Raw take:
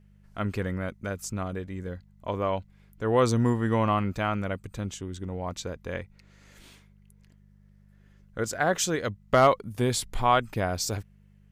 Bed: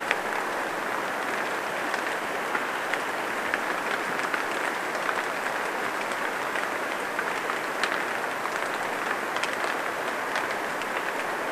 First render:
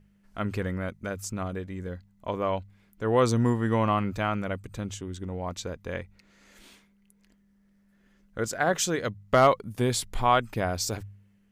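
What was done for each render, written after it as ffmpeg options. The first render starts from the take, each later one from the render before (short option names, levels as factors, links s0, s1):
-af "bandreject=f=50:t=h:w=4,bandreject=f=100:t=h:w=4,bandreject=f=150:t=h:w=4"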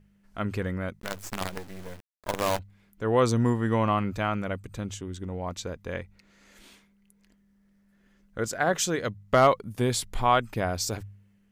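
-filter_complex "[0:a]asettb=1/sr,asplit=3[s0][s1][s2];[s0]atrim=end=1.004[s3];[s1]atrim=start=1:end=2.59,asetpts=PTS-STARTPTS,afade=t=in:d=0.004:c=qsin,afade=t=out:st=1.586:d=0.004:c=qsin,acrusher=bits=5:dc=4:mix=0:aa=0.000001[s4];[s2]atrim=start=2.586[s5];[s3][s4]acrossfade=d=0.004:c1=hsin:c2=qsin[s6];[s6][s5]acrossfade=d=0.004:c1=qsin:c2=hsin"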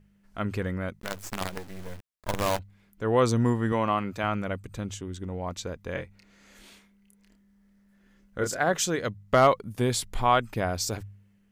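-filter_complex "[0:a]asettb=1/sr,asplit=3[s0][s1][s2];[s0]atrim=end=1.634[s3];[s1]atrim=start=1.63:end=2.46,asetpts=PTS-STARTPTS,afade=t=in:d=0.004:c=qsin,afade=t=out:st=0.826:d=0.004:c=qsin,asubboost=boost=6.5:cutoff=220[s4];[s2]atrim=start=2.456[s5];[s3][s4]acrossfade=d=0.004:c1=hsin:c2=qsin[s6];[s6][s5]acrossfade=d=0.004:c1=qsin:c2=hsin,asettb=1/sr,asplit=3[s7][s8][s9];[s7]atrim=end=3.724[s10];[s8]atrim=start=3.72:end=4.24,asetpts=PTS-STARTPTS,afade=t=in:d=0.004:c=qsin,afade=t=out:st=0.516:d=0.004:c=qsin,highpass=f=210:p=1[s11];[s9]atrim=start=4.236[s12];[s10][s11]acrossfade=d=0.004:c1=hsin:c2=qsin[s13];[s13][s12]acrossfade=d=0.004:c1=qsin:c2=hsin,asettb=1/sr,asplit=3[s14][s15][s16];[s14]atrim=end=5.924[s17];[s15]atrim=start=5.92:end=8.61,asetpts=PTS-STARTPTS,afade=t=in:d=0.004:c=qsin,afade=t=out:st=2.686:d=0.004:c=qsin,asplit=2[s18][s19];[s19]adelay=29,volume=0.596[s20];[s18][s20]amix=inputs=2:normalize=0,atrim=end_sample=118629[s21];[s16]atrim=start=8.606[s22];[s17][s21]acrossfade=d=0.004:c1=hsin:c2=qsin[s23];[s23][s22]acrossfade=d=0.004:c1=qsin:c2=hsin"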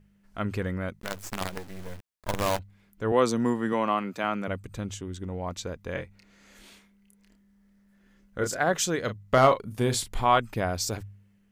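-filter_complex "[0:a]asettb=1/sr,asplit=3[s0][s1][s2];[s0]atrim=end=3.124[s3];[s1]atrim=start=3.12:end=4.48,asetpts=PTS-STARTPTS,afade=t=in:d=0.004:c=qsin,afade=t=out:st=1.356:d=0.004:c=qsin,highpass=f=160:w=0.5412,highpass=f=160:w=1.3066[s4];[s2]atrim=start=4.476[s5];[s3][s4]acrossfade=d=0.004:c1=hsin:c2=qsin[s6];[s6][s5]acrossfade=d=0.004:c1=qsin:c2=hsin,asettb=1/sr,asplit=3[s7][s8][s9];[s7]atrim=end=9.044[s10];[s8]atrim=start=9.04:end=10.38,asetpts=PTS-STARTPTS,afade=t=in:d=0.004:c=qsin,afade=t=out:st=1.336:d=0.004:c=qsin,asplit=2[s11][s12];[s12]adelay=38,volume=0.316[s13];[s11][s13]amix=inputs=2:normalize=0,atrim=end_sample=59094[s14];[s9]atrim=start=10.376[s15];[s10][s14]acrossfade=d=0.004:c1=hsin:c2=qsin[s16];[s16][s15]acrossfade=d=0.004:c1=qsin:c2=hsin"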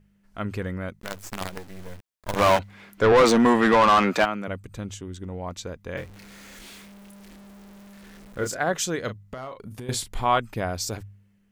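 -filter_complex "[0:a]asplit=3[s0][s1][s2];[s0]afade=t=out:st=2.35:d=0.02[s3];[s1]asplit=2[s4][s5];[s5]highpass=f=720:p=1,volume=25.1,asoftclip=type=tanh:threshold=0.398[s6];[s4][s6]amix=inputs=2:normalize=0,lowpass=f=2800:p=1,volume=0.501,afade=t=in:st=2.35:d=0.02,afade=t=out:st=4.24:d=0.02[s7];[s2]afade=t=in:st=4.24:d=0.02[s8];[s3][s7][s8]amix=inputs=3:normalize=0,asettb=1/sr,asplit=3[s9][s10][s11];[s9]atrim=end=5.974[s12];[s10]atrim=start=5.97:end=8.52,asetpts=PTS-STARTPTS,afade=t=in:d=0.004:c=qsin,afade=t=out:st=2.546:d=0.004:c=qsin,aeval=exprs='val(0)+0.5*0.00794*sgn(val(0))':c=same[s13];[s11]atrim=start=8.516[s14];[s12][s13]acrossfade=d=0.004:c1=hsin:c2=qsin[s15];[s15][s14]acrossfade=d=0.004:c1=qsin:c2=hsin,asettb=1/sr,asplit=3[s16][s17][s18];[s16]atrim=end=9.274[s19];[s17]atrim=start=9.27:end=9.89,asetpts=PTS-STARTPTS,afade=t=in:d=0.004:c=qsin,afade=t=out:st=0.616:d=0.004:c=qsin,acompressor=threshold=0.0224:ratio=8:attack=3.2:release=140:knee=1:detection=peak[s20];[s18]atrim=start=9.886[s21];[s19][s20]acrossfade=d=0.004:c1=hsin:c2=qsin[s22];[s22][s21]acrossfade=d=0.004:c1=qsin:c2=hsin"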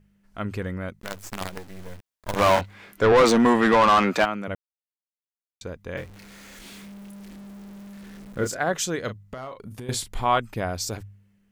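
-filter_complex "[0:a]asettb=1/sr,asplit=3[s0][s1][s2];[s0]atrim=end=2.554[s3];[s1]atrim=start=2.55:end=3.03,asetpts=PTS-STARTPTS,afade=t=in:d=0.004:c=qsin,afade=t=out:st=0.476:d=0.004:c=qsin,asplit=2[s4][s5];[s5]adelay=23,volume=0.708[s6];[s4][s6]amix=inputs=2:normalize=0,atrim=end_sample=21168[s7];[s2]atrim=start=3.026[s8];[s3][s7]acrossfade=d=0.004:c1=hsin:c2=qsin[s9];[s9][s8]acrossfade=d=0.004:c1=qsin:c2=hsin,asettb=1/sr,asplit=3[s10][s11][s12];[s10]atrim=end=6.654[s13];[s11]atrim=start=6.65:end=8.47,asetpts=PTS-STARTPTS,afade=t=in:d=0.004:c=qsin,afade=t=out:st=1.816:d=0.004:c=qsin,equalizer=f=180:t=o:w=1.7:g=6[s14];[s12]atrim=start=8.466[s15];[s13][s14]acrossfade=d=0.004:c1=hsin:c2=qsin[s16];[s16][s15]acrossfade=d=0.004:c1=qsin:c2=hsin,asplit=3[s17][s18][s19];[s17]atrim=end=4.55,asetpts=PTS-STARTPTS,afade=t=out:st=4.546:d=0.004:c=hsin[s20];[s18]atrim=start=4.55:end=5.61,asetpts=PTS-STARTPTS,volume=0[s21];[s19]atrim=start=5.61,asetpts=PTS-STARTPTS,afade=t=in:d=0.004:c=hsin[s22];[s20][s21][s22]concat=n=3:v=0:a=1"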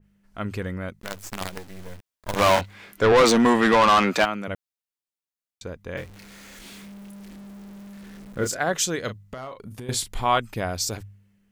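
-af "adynamicequalizer=threshold=0.0158:dfrequency=2200:dqfactor=0.7:tfrequency=2200:tqfactor=0.7:attack=5:release=100:ratio=0.375:range=2:mode=boostabove:tftype=highshelf"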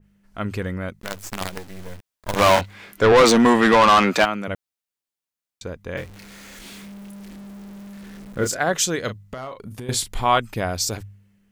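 -af "volume=1.41"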